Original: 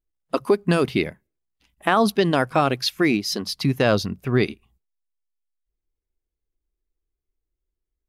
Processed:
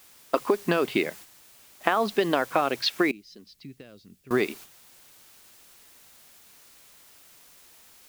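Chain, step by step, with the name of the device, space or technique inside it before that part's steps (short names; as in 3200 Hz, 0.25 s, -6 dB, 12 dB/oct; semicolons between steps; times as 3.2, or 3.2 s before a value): baby monitor (BPF 320–3600 Hz; compressor 6:1, threshold -24 dBFS, peak gain reduction 10 dB; white noise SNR 18 dB; gate -48 dBFS, range -7 dB); 3.11–4.31 passive tone stack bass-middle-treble 10-0-1; gain +4.5 dB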